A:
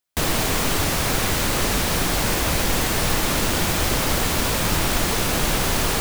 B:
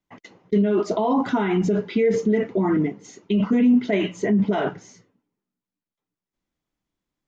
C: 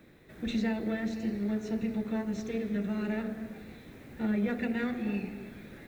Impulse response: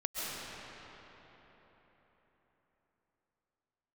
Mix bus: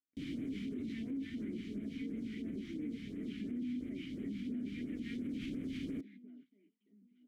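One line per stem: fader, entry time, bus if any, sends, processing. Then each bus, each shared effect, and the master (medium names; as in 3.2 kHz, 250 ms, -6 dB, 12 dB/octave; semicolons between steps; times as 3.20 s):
-4.0 dB, 0.00 s, no send, no echo send, tilt shelf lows +7.5 dB, about 770 Hz; auto duck -7 dB, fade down 1.30 s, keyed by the second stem
-9.5 dB, 0.00 s, no send, echo send -5.5 dB, crossover distortion -36 dBFS
+0.5 dB, 0.30 s, no send, no echo send, resonant low shelf 200 Hz -8 dB, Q 1.5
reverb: none
echo: feedback delay 876 ms, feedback 33%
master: phase shifter stages 2, 2.9 Hz, lowest notch 510–4500 Hz; vowel filter i; peak limiter -33.5 dBFS, peak gain reduction 10.5 dB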